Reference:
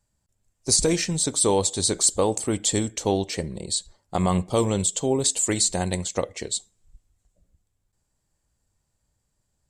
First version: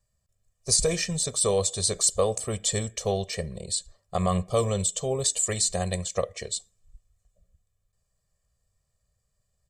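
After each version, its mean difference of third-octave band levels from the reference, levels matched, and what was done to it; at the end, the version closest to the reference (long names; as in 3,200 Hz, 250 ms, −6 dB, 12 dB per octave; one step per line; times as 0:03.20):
2.5 dB: comb filter 1.7 ms, depth 100%
level −5.5 dB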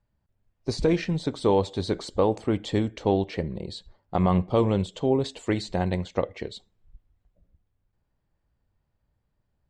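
5.0 dB: high-frequency loss of the air 330 metres
level +1 dB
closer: first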